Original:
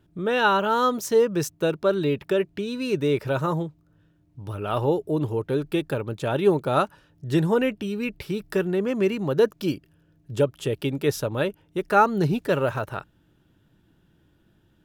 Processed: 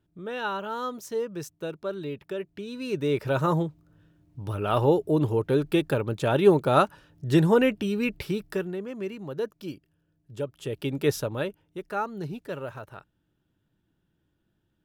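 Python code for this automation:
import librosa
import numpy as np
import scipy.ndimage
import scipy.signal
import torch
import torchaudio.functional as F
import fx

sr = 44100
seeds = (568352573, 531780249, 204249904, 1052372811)

y = fx.gain(x, sr, db=fx.line((2.37, -10.5), (3.53, 1.5), (8.24, 1.5), (8.86, -11.0), (10.39, -11.0), (11.06, -0.5), (11.99, -12.0)))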